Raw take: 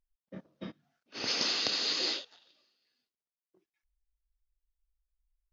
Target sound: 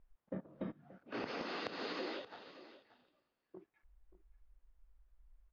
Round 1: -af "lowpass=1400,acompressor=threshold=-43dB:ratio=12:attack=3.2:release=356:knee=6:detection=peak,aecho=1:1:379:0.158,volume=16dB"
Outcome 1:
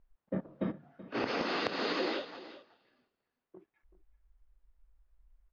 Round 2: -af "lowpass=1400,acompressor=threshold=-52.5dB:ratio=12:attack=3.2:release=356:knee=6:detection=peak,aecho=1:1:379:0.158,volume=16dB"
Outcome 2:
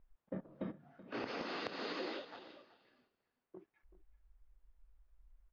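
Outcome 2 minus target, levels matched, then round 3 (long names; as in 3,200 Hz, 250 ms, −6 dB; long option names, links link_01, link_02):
echo 200 ms early
-af "lowpass=1400,acompressor=threshold=-52.5dB:ratio=12:attack=3.2:release=356:knee=6:detection=peak,aecho=1:1:579:0.158,volume=16dB"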